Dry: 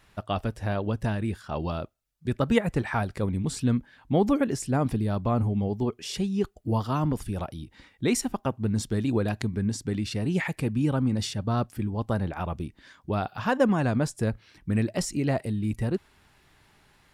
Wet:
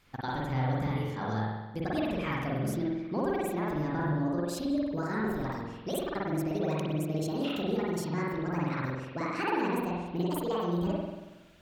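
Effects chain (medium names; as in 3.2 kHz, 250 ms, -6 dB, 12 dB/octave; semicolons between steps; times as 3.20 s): gliding tape speed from 126% -> 169%; compression 2.5:1, threshold -29 dBFS, peak gain reduction 9 dB; spring tank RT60 1.1 s, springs 46 ms, chirp 20 ms, DRR -5 dB; trim -6 dB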